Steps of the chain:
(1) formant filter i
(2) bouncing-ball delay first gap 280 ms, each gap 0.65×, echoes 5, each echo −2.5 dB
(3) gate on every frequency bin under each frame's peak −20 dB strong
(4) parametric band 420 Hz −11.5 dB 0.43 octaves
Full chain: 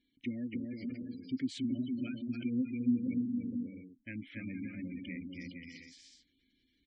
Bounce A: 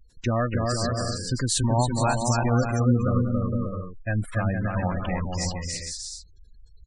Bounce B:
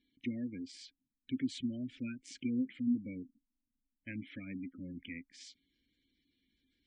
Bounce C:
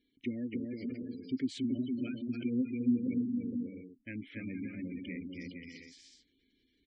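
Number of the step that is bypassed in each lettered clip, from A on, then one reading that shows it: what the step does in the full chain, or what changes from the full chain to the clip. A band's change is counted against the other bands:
1, 250 Hz band −14.5 dB
2, change in momentary loudness spread +4 LU
4, 500 Hz band +6.0 dB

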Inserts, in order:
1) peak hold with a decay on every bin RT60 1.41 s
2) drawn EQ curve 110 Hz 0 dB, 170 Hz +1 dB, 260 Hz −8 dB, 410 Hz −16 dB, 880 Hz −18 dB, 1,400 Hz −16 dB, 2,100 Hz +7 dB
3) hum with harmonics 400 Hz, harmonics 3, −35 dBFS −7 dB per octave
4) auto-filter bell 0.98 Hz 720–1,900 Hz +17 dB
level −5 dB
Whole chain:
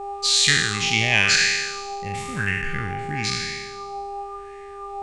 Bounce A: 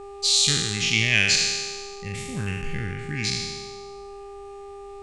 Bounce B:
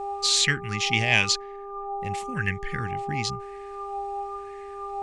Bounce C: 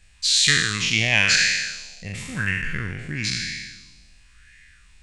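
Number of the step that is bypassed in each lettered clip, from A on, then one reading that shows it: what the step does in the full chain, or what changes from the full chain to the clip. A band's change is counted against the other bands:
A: 4, 1 kHz band −10.0 dB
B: 1, 2 kHz band −3.5 dB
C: 3, 1 kHz band −10.0 dB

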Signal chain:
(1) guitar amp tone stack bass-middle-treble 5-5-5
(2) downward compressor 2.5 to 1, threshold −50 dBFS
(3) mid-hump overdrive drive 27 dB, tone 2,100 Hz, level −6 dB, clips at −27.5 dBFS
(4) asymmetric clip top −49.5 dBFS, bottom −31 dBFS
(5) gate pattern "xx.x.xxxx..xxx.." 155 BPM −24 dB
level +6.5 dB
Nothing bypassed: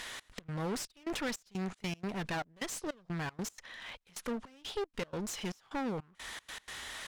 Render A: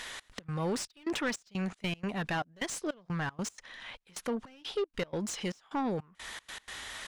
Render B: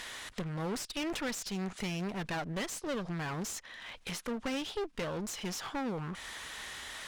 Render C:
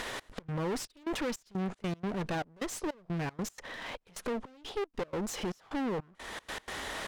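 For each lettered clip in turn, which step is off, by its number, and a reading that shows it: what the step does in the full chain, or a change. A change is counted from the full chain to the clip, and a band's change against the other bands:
4, distortion level −9 dB
5, change in crest factor −2.0 dB
1, 8 kHz band −3.0 dB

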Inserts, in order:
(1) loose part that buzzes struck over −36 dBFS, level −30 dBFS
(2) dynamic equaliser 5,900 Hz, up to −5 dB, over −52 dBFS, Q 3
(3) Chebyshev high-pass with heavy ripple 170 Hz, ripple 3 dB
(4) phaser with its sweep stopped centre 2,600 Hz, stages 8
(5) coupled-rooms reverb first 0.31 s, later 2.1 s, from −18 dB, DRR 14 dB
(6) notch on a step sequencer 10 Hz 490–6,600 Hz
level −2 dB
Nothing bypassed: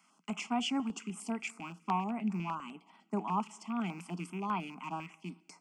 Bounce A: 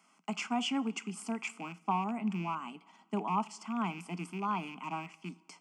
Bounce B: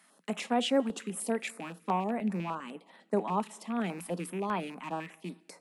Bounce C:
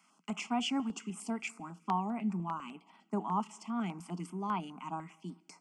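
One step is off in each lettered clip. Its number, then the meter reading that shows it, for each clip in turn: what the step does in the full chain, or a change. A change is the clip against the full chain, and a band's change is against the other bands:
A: 6, change in momentary loudness spread −2 LU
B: 4, 500 Hz band +9.0 dB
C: 1, 2 kHz band −1.5 dB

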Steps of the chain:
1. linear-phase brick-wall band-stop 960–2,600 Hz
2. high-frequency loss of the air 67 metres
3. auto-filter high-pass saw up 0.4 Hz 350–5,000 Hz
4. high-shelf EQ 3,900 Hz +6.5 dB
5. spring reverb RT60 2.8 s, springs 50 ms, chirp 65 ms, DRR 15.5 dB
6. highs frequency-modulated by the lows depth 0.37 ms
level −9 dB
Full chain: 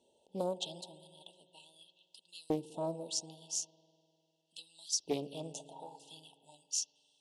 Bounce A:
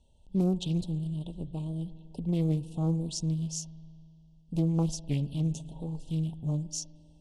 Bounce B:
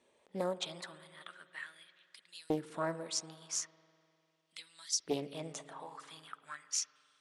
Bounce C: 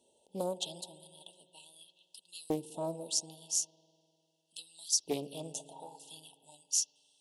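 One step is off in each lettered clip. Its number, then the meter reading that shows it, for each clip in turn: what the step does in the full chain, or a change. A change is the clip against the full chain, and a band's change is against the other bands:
3, 125 Hz band +24.0 dB
1, 2 kHz band +13.5 dB
2, 8 kHz band +5.0 dB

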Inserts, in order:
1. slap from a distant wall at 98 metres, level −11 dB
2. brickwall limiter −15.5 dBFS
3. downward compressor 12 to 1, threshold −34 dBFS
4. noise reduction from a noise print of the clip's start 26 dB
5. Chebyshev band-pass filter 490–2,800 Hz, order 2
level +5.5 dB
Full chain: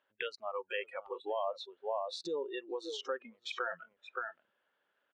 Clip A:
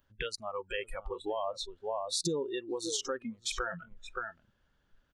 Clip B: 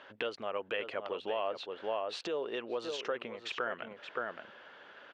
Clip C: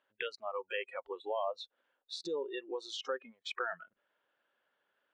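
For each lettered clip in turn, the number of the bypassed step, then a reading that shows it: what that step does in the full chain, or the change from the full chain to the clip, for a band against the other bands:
5, 8 kHz band +17.0 dB
4, 8 kHz band −2.0 dB
1, change in momentary loudness spread +3 LU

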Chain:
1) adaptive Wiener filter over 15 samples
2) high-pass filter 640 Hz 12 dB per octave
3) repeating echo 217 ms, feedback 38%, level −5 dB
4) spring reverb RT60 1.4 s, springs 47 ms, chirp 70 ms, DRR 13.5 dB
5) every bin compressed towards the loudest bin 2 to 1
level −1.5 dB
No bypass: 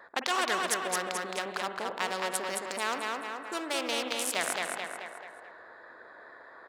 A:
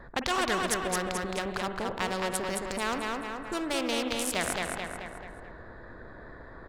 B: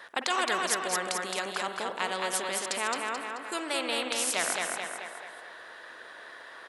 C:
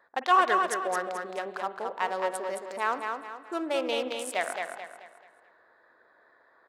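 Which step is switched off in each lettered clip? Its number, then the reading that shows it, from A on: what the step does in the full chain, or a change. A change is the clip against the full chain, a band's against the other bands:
2, change in momentary loudness spread −2 LU
1, 8 kHz band +2.5 dB
5, 8 kHz band −9.5 dB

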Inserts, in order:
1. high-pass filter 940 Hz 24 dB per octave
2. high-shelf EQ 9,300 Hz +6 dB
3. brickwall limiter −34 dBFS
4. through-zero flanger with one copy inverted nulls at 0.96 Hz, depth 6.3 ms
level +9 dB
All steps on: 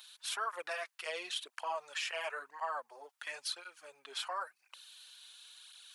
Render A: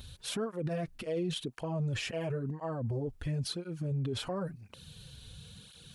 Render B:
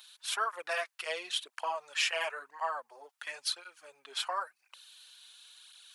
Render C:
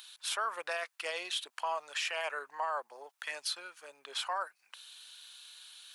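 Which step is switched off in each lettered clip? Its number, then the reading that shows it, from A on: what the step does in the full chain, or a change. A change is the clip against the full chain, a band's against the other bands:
1, 250 Hz band +29.5 dB
3, change in crest factor +4.0 dB
4, change in crest factor −3.0 dB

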